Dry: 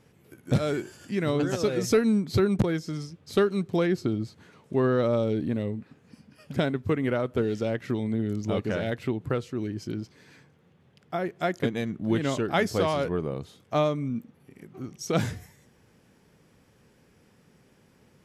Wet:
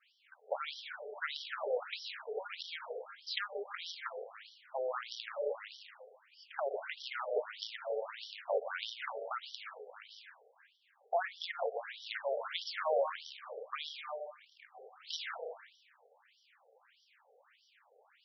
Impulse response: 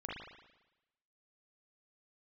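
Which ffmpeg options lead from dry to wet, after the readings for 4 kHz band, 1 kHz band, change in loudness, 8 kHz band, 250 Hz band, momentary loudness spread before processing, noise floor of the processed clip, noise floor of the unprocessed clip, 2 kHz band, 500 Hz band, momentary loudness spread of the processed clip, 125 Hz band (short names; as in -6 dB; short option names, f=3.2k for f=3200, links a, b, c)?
-2.0 dB, -6.5 dB, -12.0 dB, under -15 dB, under -40 dB, 11 LU, -71 dBFS, -61 dBFS, -6.0 dB, -11.0 dB, 16 LU, under -40 dB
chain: -filter_complex "[0:a]bandreject=f=60:t=h:w=6,bandreject=f=120:t=h:w=6,bandreject=f=180:t=h:w=6,bandreject=f=240:t=h:w=6,bandreject=f=300:t=h:w=6,acrossover=split=420|4500[a][b][c];[b]alimiter=limit=-24dB:level=0:latency=1:release=64[d];[a][d][c]amix=inputs=3:normalize=0,adynamicequalizer=threshold=0.00224:dfrequency=2300:dqfactor=2.5:tfrequency=2300:tqfactor=2.5:attack=5:release=100:ratio=0.375:range=1.5:mode=cutabove:tftype=bell,highpass=99,asplit=2[e][f];[1:a]atrim=start_sample=2205,lowshelf=f=76:g=-3,adelay=120[g];[f][g]afir=irnorm=-1:irlink=0,volume=-6.5dB[h];[e][h]amix=inputs=2:normalize=0,acrusher=bits=4:mode=log:mix=0:aa=0.000001,equalizer=f=200:t=o:w=2.6:g=-5,acompressor=threshold=-29dB:ratio=4,aeval=exprs='0.106*(cos(1*acos(clip(val(0)/0.106,-1,1)))-cos(1*PI/2))+0.0266*(cos(3*acos(clip(val(0)/0.106,-1,1)))-cos(3*PI/2))+0.00668*(cos(5*acos(clip(val(0)/0.106,-1,1)))-cos(5*PI/2))+0.000944*(cos(7*acos(clip(val(0)/0.106,-1,1)))-cos(7*PI/2))':c=same,afftfilt=real='re*between(b*sr/1024,550*pow(4200/550,0.5+0.5*sin(2*PI*1.6*pts/sr))/1.41,550*pow(4200/550,0.5+0.5*sin(2*PI*1.6*pts/sr))*1.41)':imag='im*between(b*sr/1024,550*pow(4200/550,0.5+0.5*sin(2*PI*1.6*pts/sr))/1.41,550*pow(4200/550,0.5+0.5*sin(2*PI*1.6*pts/sr))*1.41)':win_size=1024:overlap=0.75,volume=10.5dB"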